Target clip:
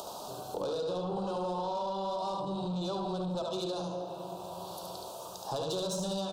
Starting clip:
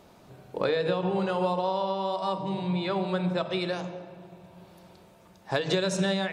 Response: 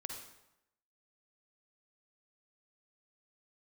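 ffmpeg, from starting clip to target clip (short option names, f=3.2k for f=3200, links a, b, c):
-filter_complex "[0:a]acrossover=split=490[a][b];[b]acompressor=mode=upward:threshold=-34dB:ratio=2.5[c];[a][c]amix=inputs=2:normalize=0,aecho=1:1:72:0.596,asplit=2[d][e];[1:a]atrim=start_sample=2205[f];[e][f]afir=irnorm=-1:irlink=0,volume=-1dB[g];[d][g]amix=inputs=2:normalize=0,asoftclip=type=tanh:threshold=-22dB,asuperstop=centerf=2000:order=4:qfactor=0.74,lowshelf=f=420:g=-7,acompressor=threshold=-34dB:ratio=3,volume=1dB"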